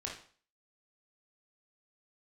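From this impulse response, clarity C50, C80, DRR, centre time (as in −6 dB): 5.0 dB, 10.5 dB, −2.5 dB, 31 ms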